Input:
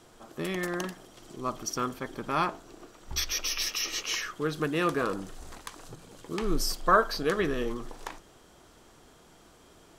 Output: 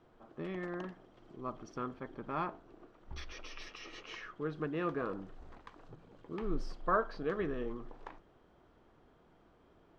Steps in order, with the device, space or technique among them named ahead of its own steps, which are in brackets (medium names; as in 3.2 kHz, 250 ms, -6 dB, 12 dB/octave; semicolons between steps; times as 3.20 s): phone in a pocket (low-pass 3.4 kHz 12 dB/octave; treble shelf 2.3 kHz -11 dB); trim -7 dB